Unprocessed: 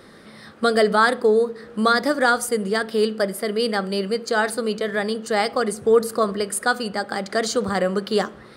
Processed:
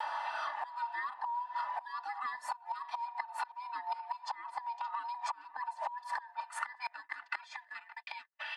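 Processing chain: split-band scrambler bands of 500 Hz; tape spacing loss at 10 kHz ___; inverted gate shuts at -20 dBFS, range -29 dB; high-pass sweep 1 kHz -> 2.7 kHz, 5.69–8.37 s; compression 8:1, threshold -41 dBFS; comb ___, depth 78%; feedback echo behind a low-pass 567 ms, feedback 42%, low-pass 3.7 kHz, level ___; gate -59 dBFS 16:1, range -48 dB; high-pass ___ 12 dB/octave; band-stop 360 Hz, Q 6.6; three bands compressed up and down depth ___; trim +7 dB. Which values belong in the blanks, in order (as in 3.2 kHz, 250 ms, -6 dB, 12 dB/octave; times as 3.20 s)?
25 dB, 3.4 ms, -19 dB, 260 Hz, 70%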